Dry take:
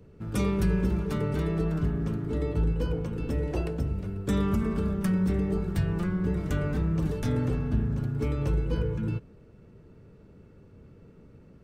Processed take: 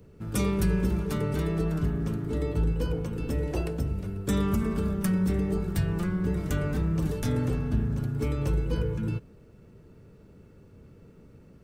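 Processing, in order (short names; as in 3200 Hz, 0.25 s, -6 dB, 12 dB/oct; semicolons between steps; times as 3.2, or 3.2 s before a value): high shelf 6200 Hz +9.5 dB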